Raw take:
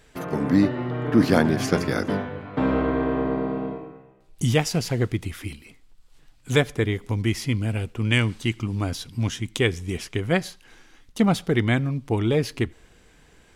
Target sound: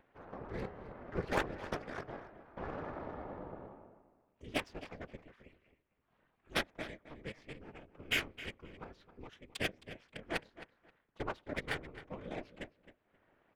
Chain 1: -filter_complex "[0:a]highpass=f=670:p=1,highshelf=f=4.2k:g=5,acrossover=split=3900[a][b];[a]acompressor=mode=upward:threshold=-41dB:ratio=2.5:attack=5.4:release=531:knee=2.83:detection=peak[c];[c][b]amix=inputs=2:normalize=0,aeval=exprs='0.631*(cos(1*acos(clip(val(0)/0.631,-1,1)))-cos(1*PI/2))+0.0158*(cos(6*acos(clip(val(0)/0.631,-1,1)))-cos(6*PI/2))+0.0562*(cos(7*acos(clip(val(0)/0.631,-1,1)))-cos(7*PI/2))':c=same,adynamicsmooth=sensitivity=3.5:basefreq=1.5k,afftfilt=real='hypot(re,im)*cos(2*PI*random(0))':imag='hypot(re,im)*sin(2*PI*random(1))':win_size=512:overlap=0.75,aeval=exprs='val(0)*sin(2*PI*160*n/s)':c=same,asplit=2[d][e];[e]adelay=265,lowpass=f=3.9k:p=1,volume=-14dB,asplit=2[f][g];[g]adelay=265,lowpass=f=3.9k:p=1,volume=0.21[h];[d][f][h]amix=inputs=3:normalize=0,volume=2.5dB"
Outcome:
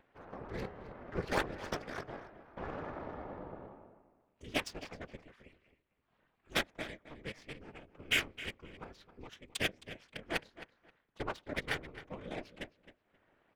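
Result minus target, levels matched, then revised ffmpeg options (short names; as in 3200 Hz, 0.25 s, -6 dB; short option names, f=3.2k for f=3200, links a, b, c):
8000 Hz band +2.5 dB
-filter_complex "[0:a]highpass=f=670:p=1,highshelf=f=4.2k:g=-3,acrossover=split=3900[a][b];[a]acompressor=mode=upward:threshold=-41dB:ratio=2.5:attack=5.4:release=531:knee=2.83:detection=peak[c];[c][b]amix=inputs=2:normalize=0,aeval=exprs='0.631*(cos(1*acos(clip(val(0)/0.631,-1,1)))-cos(1*PI/2))+0.0158*(cos(6*acos(clip(val(0)/0.631,-1,1)))-cos(6*PI/2))+0.0562*(cos(7*acos(clip(val(0)/0.631,-1,1)))-cos(7*PI/2))':c=same,adynamicsmooth=sensitivity=3.5:basefreq=1.5k,afftfilt=real='hypot(re,im)*cos(2*PI*random(0))':imag='hypot(re,im)*sin(2*PI*random(1))':win_size=512:overlap=0.75,aeval=exprs='val(0)*sin(2*PI*160*n/s)':c=same,asplit=2[d][e];[e]adelay=265,lowpass=f=3.9k:p=1,volume=-14dB,asplit=2[f][g];[g]adelay=265,lowpass=f=3.9k:p=1,volume=0.21[h];[d][f][h]amix=inputs=3:normalize=0,volume=2.5dB"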